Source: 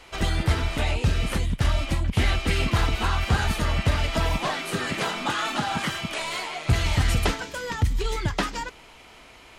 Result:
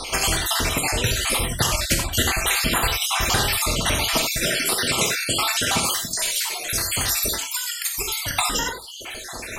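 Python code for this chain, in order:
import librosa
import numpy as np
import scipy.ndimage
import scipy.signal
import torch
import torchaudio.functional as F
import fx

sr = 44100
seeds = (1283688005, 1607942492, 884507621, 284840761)

y = fx.spec_dropout(x, sr, seeds[0], share_pct=63)
y = fx.pre_emphasis(y, sr, coefficient=0.8, at=(5.91, 8.31))
y = fx.dereverb_blind(y, sr, rt60_s=1.6)
y = fx.high_shelf(y, sr, hz=5200.0, db=10.5)
y = fx.rev_gated(y, sr, seeds[1], gate_ms=110, shape='flat', drr_db=4.5)
y = fx.spectral_comp(y, sr, ratio=2.0)
y = F.gain(torch.from_numpy(y), 4.5).numpy()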